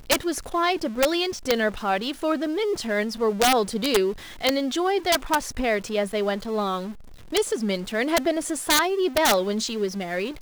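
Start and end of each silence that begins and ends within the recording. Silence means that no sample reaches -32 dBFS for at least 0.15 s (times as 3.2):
4.13–4.41
6.92–7.32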